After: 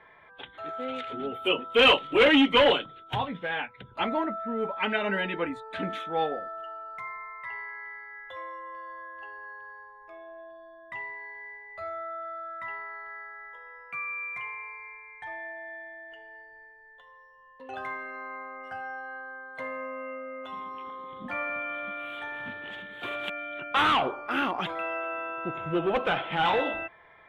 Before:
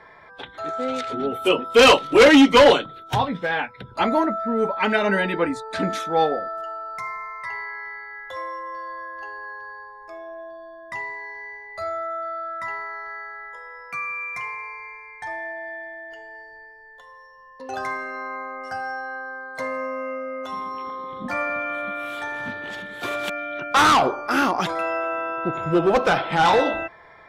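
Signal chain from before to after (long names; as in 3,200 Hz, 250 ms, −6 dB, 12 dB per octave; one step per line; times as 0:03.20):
high shelf with overshoot 4,000 Hz −9 dB, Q 3
level −8.5 dB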